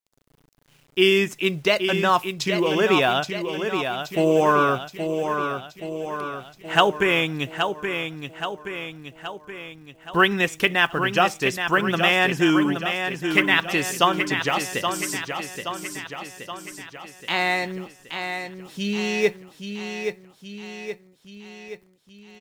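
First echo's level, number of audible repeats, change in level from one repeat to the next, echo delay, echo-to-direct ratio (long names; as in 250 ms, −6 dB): −7.0 dB, 6, −5.0 dB, 824 ms, −5.5 dB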